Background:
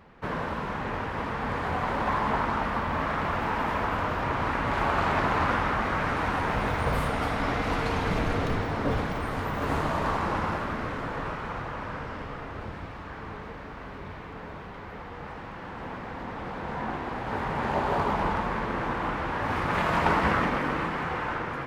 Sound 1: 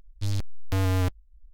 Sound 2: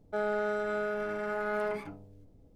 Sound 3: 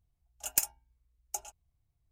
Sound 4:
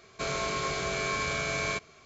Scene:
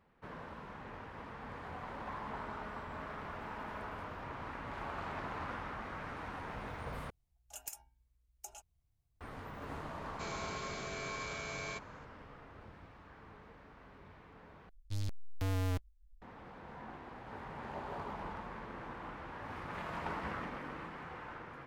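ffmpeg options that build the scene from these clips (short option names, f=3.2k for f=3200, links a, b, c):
-filter_complex "[0:a]volume=-16.5dB[a];[2:a]equalizer=f=520:w=0.45:g=-9[b];[3:a]acompressor=threshold=-43dB:ratio=2:attack=0.26:release=56:knee=1:detection=rms[c];[a]asplit=3[d][e][f];[d]atrim=end=7.104[g];[c]atrim=end=2.11,asetpts=PTS-STARTPTS,volume=-2dB[h];[e]atrim=start=9.206:end=14.694[i];[1:a]atrim=end=1.53,asetpts=PTS-STARTPTS,volume=-10dB[j];[f]atrim=start=16.216[k];[b]atrim=end=2.55,asetpts=PTS-STARTPTS,volume=-14.5dB,afade=t=in:d=0.004:c=hsin,afade=t=out:st=2.546:d=0.004:c=hsin,adelay=2210[l];[4:a]atrim=end=2.05,asetpts=PTS-STARTPTS,volume=-11.5dB,afade=t=in:d=0.004:c=hsin,afade=t=out:st=2.046:d=0.004:c=hsin,adelay=10000[m];[g][h]acrossfade=d=0.004:c1=hsin:c2=hsin[n];[n][i]acrossfade=d=0.004:c1=hsin:c2=hsin[o];[o][j]acrossfade=d=0.004:c1=hsin:c2=hsin[p];[p][k]acrossfade=d=0.004:c1=hsin:c2=hsin[q];[q][l][m]amix=inputs=3:normalize=0"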